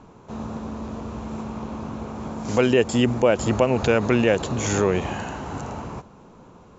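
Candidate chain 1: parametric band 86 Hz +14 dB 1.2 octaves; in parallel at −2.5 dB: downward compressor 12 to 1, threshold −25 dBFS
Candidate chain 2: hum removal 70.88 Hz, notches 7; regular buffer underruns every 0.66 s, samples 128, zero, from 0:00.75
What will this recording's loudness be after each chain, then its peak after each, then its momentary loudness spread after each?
−19.0, −24.0 LKFS; −2.0, −5.0 dBFS; 9, 14 LU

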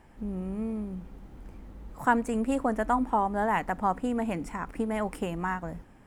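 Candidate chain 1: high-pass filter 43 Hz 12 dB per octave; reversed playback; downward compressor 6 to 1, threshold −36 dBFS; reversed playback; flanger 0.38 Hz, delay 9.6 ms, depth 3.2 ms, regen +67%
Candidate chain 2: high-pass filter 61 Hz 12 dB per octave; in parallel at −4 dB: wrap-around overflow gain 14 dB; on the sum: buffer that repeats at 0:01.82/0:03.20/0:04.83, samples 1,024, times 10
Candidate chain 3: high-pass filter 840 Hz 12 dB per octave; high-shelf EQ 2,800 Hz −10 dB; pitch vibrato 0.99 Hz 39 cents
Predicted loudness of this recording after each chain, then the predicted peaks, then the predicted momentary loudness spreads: −44.5, −25.5, −35.0 LKFS; −28.5, −10.0, −13.5 dBFS; 11, 10, 20 LU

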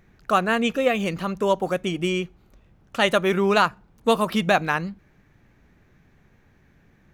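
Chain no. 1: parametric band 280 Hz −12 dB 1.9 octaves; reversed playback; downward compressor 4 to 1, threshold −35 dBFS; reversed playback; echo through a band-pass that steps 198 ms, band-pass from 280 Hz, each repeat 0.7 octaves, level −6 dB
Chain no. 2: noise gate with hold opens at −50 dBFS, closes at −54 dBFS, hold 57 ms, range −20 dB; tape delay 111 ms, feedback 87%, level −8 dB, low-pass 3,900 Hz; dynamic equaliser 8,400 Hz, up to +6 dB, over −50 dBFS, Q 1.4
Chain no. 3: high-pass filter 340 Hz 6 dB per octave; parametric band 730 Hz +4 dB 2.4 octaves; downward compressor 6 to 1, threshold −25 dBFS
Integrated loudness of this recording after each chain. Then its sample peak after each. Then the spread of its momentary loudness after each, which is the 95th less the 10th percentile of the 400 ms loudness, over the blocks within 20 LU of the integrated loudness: −37.5, −22.0, −30.0 LKFS; −20.5, −5.0, −12.5 dBFS; 16, 15, 6 LU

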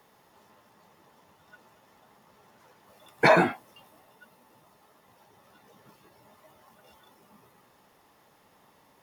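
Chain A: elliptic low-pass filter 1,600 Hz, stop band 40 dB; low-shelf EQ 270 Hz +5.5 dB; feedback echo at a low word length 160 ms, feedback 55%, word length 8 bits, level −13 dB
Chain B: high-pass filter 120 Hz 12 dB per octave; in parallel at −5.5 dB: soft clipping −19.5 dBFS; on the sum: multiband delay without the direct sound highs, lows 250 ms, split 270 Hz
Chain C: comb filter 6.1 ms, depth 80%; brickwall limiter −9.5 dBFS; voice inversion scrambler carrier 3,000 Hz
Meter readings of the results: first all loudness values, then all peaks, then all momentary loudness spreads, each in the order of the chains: −24.0, −22.5, −19.5 LKFS; −6.5, −6.5, −8.5 dBFS; 19, 16, 6 LU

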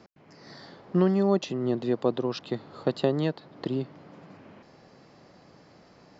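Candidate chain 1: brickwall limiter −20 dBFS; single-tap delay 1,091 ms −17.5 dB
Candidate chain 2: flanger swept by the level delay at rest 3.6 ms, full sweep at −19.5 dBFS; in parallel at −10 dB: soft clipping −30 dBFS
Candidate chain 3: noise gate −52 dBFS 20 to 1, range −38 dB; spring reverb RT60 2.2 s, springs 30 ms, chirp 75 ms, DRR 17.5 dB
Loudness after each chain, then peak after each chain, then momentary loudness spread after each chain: −32.0, −28.5, −28.0 LKFS; −19.0, −12.5, −10.0 dBFS; 20, 17, 22 LU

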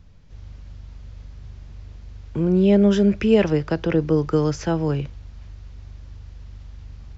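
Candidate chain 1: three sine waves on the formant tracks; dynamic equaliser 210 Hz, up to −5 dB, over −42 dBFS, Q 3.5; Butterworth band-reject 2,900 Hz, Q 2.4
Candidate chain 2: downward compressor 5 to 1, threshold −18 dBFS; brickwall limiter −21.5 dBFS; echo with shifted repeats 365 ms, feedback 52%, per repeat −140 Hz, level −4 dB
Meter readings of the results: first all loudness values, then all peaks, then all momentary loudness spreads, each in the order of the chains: −19.5, −32.0 LKFS; −1.5, −16.0 dBFS; 12, 12 LU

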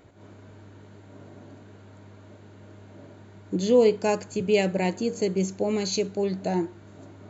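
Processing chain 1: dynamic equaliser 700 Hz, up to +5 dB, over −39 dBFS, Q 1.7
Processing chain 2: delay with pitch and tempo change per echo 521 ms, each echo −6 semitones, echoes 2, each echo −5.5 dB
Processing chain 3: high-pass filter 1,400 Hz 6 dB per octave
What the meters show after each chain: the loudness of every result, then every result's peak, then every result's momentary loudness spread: −23.5, −24.5, −33.5 LKFS; −7.0, −8.5, −14.5 dBFS; 10, 9, 9 LU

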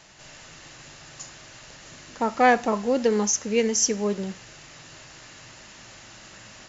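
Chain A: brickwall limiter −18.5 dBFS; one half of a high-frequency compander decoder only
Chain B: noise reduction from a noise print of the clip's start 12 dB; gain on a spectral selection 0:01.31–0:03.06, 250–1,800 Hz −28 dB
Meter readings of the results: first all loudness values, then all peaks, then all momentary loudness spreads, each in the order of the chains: −27.5, −25.5 LKFS; −18.5, −10.0 dBFS; 21, 21 LU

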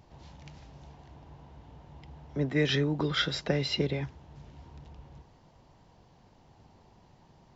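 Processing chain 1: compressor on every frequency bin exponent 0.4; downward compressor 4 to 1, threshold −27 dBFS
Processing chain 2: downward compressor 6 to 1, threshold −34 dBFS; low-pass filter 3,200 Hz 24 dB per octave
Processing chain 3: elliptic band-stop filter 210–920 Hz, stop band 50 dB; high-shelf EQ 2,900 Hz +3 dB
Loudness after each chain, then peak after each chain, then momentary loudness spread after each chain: −33.0, −42.5, −31.5 LKFS; −16.0, −24.0, −13.5 dBFS; 7, 23, 20 LU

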